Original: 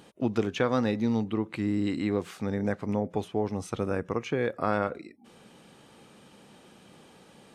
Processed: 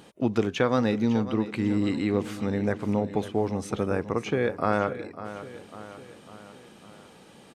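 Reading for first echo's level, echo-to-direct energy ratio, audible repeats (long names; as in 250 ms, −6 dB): −13.5 dB, −12.0 dB, 4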